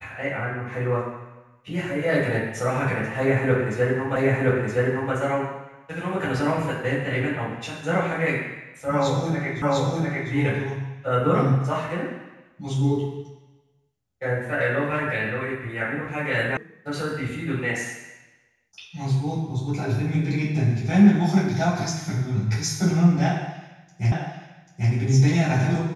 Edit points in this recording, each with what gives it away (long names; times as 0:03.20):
0:04.16: the same again, the last 0.97 s
0:09.62: the same again, the last 0.7 s
0:16.57: cut off before it has died away
0:24.12: the same again, the last 0.79 s